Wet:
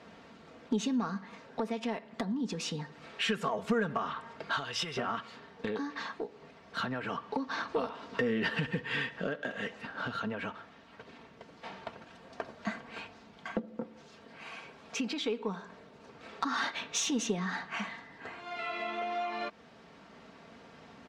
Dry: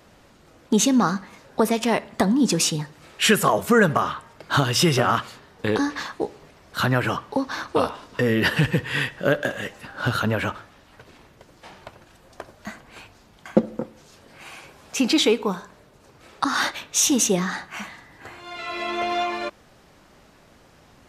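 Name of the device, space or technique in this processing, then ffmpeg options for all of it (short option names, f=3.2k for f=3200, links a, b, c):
AM radio: -filter_complex "[0:a]highpass=110,lowpass=4.2k,acompressor=threshold=-30dB:ratio=5,asoftclip=type=tanh:threshold=-18.5dB,tremolo=f=0.24:d=0.39,asettb=1/sr,asplit=3[a][b][c];[a]atrim=end=4.514[d];[b]atrim=start=4.51:end=4.97,asetpts=PTS-STARTPTS,afade=t=in:d=0.004:c=qsin,afade=t=out:st=0.456:d=0.004:c=qsin,equalizer=f=220:w=0.59:g=-11.5[e];[c]atrim=start=4.966[f];[d][e]acrossfade=d=0.004:c1=hsin:c2=qsin[g];[g][f]acrossfade=d=0.004:c1=qsin:c2=hsin,aecho=1:1:4.4:0.47"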